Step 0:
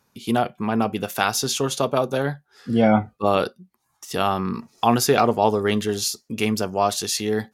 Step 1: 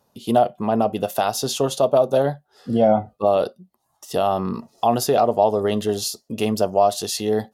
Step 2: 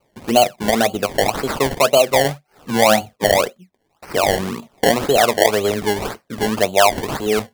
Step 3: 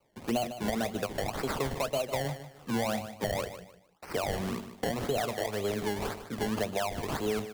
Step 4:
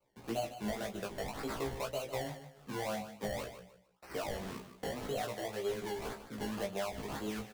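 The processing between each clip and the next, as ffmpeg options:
-af "bandreject=f=2300:w=5.1,alimiter=limit=0.282:level=0:latency=1:release=168,equalizer=f=630:t=o:w=0.67:g=11,equalizer=f=1600:t=o:w=0.67:g=-7,equalizer=f=6300:t=o:w=0.67:g=-3"
-filter_complex "[0:a]acrossover=split=300|940|6200[s0][s1][s2][s3];[s0]flanger=delay=6.8:depth=9.4:regen=-50:speed=0.87:shape=triangular[s4];[s3]alimiter=limit=0.0708:level=0:latency=1:release=258[s5];[s4][s1][s2][s5]amix=inputs=4:normalize=0,acrusher=samples=24:mix=1:aa=0.000001:lfo=1:lforange=24:lforate=1.9,volume=1.5"
-filter_complex "[0:a]acrossover=split=180[s0][s1];[s1]acompressor=threshold=0.1:ratio=6[s2];[s0][s2]amix=inputs=2:normalize=0,asoftclip=type=tanh:threshold=0.316,aecho=1:1:151|302|453:0.266|0.0772|0.0224,volume=0.422"
-filter_complex "[0:a]flanger=delay=17:depth=3.1:speed=0.52,asplit=2[s0][s1];[s1]adelay=15,volume=0.596[s2];[s0][s2]amix=inputs=2:normalize=0,volume=0.562"

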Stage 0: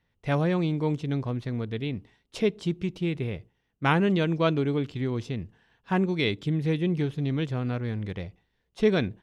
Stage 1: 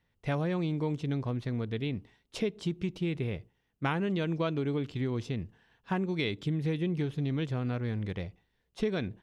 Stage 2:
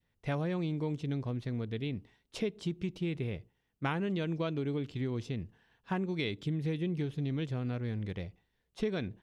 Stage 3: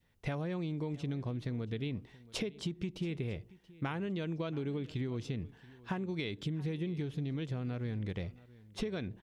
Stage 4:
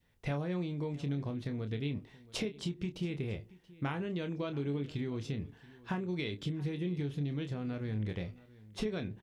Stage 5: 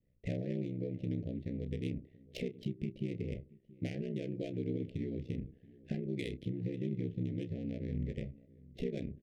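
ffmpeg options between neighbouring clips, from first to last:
-af "acompressor=threshold=0.0562:ratio=6,volume=0.841"
-af "adynamicequalizer=threshold=0.00398:dfrequency=1100:dqfactor=0.97:tfrequency=1100:tqfactor=0.97:attack=5:release=100:ratio=0.375:range=2:mode=cutabove:tftype=bell,volume=0.75"
-af "acompressor=threshold=0.0112:ratio=6,aecho=1:1:679:0.0944,volume=1.88"
-filter_complex "[0:a]asplit=2[s0][s1];[s1]adelay=28,volume=0.398[s2];[s0][s2]amix=inputs=2:normalize=0"
-af "adynamicsmooth=sensitivity=7:basefreq=1100,aeval=exprs='val(0)*sin(2*PI*32*n/s)':c=same,asuperstop=centerf=1100:order=8:qfactor=0.83,volume=1.19"

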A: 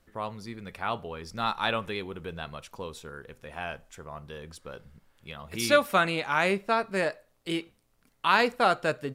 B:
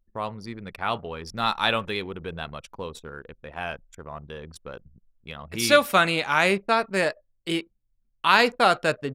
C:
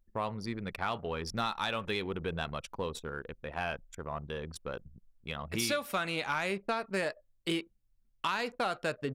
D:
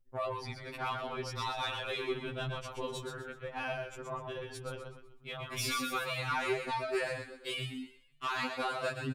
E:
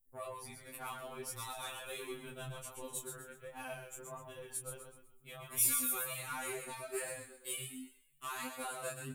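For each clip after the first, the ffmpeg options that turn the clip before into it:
-af "anlmdn=0.0631,adynamicequalizer=threshold=0.02:dfrequency=2100:dqfactor=0.7:tfrequency=2100:tqfactor=0.7:attack=5:release=100:ratio=0.375:range=2:mode=boostabove:tftype=highshelf,volume=1.5"
-af "acompressor=threshold=0.0398:ratio=8,asoftclip=type=tanh:threshold=0.1"
-filter_complex "[0:a]asplit=6[s0][s1][s2][s3][s4][s5];[s1]adelay=125,afreqshift=-37,volume=0.562[s6];[s2]adelay=250,afreqshift=-74,volume=0.209[s7];[s3]adelay=375,afreqshift=-111,volume=0.0767[s8];[s4]adelay=500,afreqshift=-148,volume=0.0285[s9];[s5]adelay=625,afreqshift=-185,volume=0.0106[s10];[s0][s6][s7][s8][s9][s10]amix=inputs=6:normalize=0,afftfilt=real='re*2.45*eq(mod(b,6),0)':imag='im*2.45*eq(mod(b,6),0)':win_size=2048:overlap=0.75"
-af "flanger=delay=19:depth=2.6:speed=1.4,aexciter=amount=15.1:drive=4.1:freq=7400,volume=0.531"

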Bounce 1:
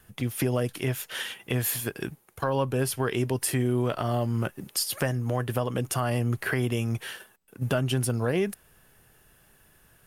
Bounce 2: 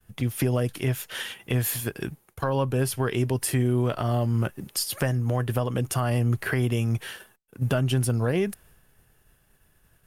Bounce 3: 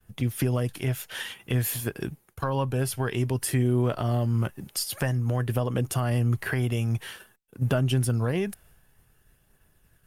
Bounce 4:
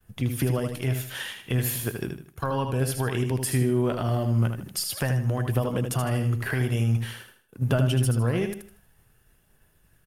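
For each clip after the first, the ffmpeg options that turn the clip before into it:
-af "agate=range=0.0224:threshold=0.00224:ratio=3:detection=peak,lowshelf=f=120:g=8"
-af "aphaser=in_gain=1:out_gain=1:delay=1.5:decay=0.22:speed=0.52:type=triangular,volume=0.794"
-af "aecho=1:1:78|156|234|312:0.473|0.156|0.0515|0.017"

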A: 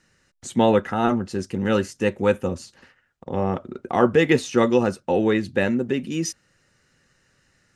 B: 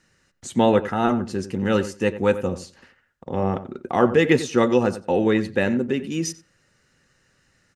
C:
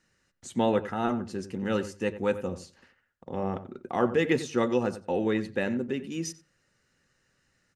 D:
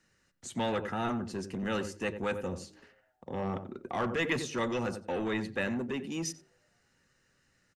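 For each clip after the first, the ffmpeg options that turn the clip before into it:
-filter_complex "[0:a]asplit=2[s0][s1];[s1]adelay=92,lowpass=f=2200:p=1,volume=0.224,asplit=2[s2][s3];[s3]adelay=92,lowpass=f=2200:p=1,volume=0.16[s4];[s0][s2][s4]amix=inputs=3:normalize=0"
-af "bandreject=f=50:t=h:w=6,bandreject=f=100:t=h:w=6,bandreject=f=150:t=h:w=6,volume=0.422"
-filter_complex "[0:a]acrossover=split=110|1100[s0][s1][s2];[s0]asplit=8[s3][s4][s5][s6][s7][s8][s9][s10];[s4]adelay=109,afreqshift=110,volume=0.251[s11];[s5]adelay=218,afreqshift=220,volume=0.151[s12];[s6]adelay=327,afreqshift=330,volume=0.0902[s13];[s7]adelay=436,afreqshift=440,volume=0.0543[s14];[s8]adelay=545,afreqshift=550,volume=0.0327[s15];[s9]adelay=654,afreqshift=660,volume=0.0195[s16];[s10]adelay=763,afreqshift=770,volume=0.0117[s17];[s3][s11][s12][s13][s14][s15][s16][s17]amix=inputs=8:normalize=0[s18];[s1]asoftclip=type=tanh:threshold=0.0299[s19];[s18][s19][s2]amix=inputs=3:normalize=0"

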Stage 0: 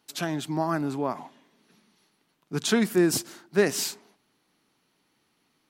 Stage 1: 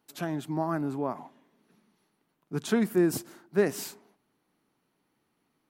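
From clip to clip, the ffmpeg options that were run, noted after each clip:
-af "equalizer=f=4800:t=o:w=2.5:g=-9.5,volume=0.794"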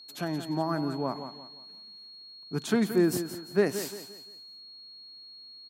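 -af "aeval=exprs='val(0)+0.00447*sin(2*PI*4300*n/s)':c=same,aecho=1:1:174|348|522|696:0.299|0.104|0.0366|0.0128"

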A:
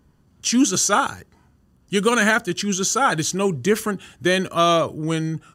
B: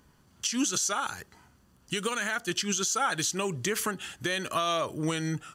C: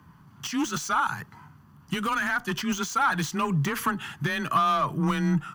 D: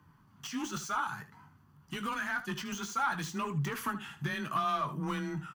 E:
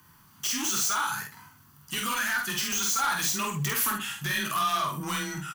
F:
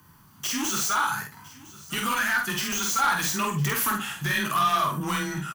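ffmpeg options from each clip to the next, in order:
-af "tiltshelf=f=640:g=-5.5,acompressor=threshold=0.0891:ratio=8,alimiter=limit=0.133:level=0:latency=1:release=217"
-af "aeval=exprs='0.133*sin(PI/2*1.58*val(0)/0.133)':c=same,equalizer=f=125:t=o:w=1:g=11,equalizer=f=500:t=o:w=1:g=-10,equalizer=f=1000:t=o:w=1:g=10,equalizer=f=4000:t=o:w=1:g=-4,equalizer=f=8000:t=o:w=1:g=-11,afreqshift=21,volume=0.631"
-filter_complex "[0:a]flanger=delay=2:depth=4.6:regen=-63:speed=0.55:shape=triangular,asplit=2[s0][s1];[s1]aecho=0:1:20|76:0.335|0.211[s2];[s0][s2]amix=inputs=2:normalize=0,volume=0.596"
-filter_complex "[0:a]crystalizer=i=8.5:c=0,asoftclip=type=tanh:threshold=0.0708,asplit=2[s0][s1];[s1]adelay=48,volume=0.708[s2];[s0][s2]amix=inputs=2:normalize=0"
-filter_complex "[0:a]asplit=2[s0][s1];[s1]adynamicsmooth=sensitivity=3:basefreq=1400,volume=0.75[s2];[s0][s2]amix=inputs=2:normalize=0,aecho=1:1:1008:0.1"

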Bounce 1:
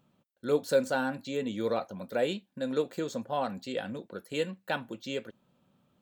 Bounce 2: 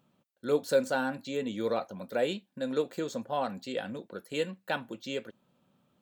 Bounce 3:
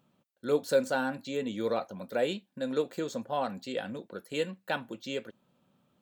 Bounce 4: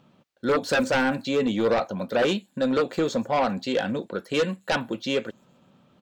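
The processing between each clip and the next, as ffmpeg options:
-af "lowshelf=f=77:g=-8.5"
-af anull
-filter_complex "[0:a]acrossover=split=6300[s0][s1];[s0]aeval=exprs='0.188*sin(PI/2*3.16*val(0)/0.188)':c=same[s2];[s1]aecho=1:1:130|260|390|520|650|780|910:0.398|0.227|0.129|0.0737|0.042|0.024|0.0137[s3];[s2][s3]amix=inputs=2:normalize=0,volume=0.75"

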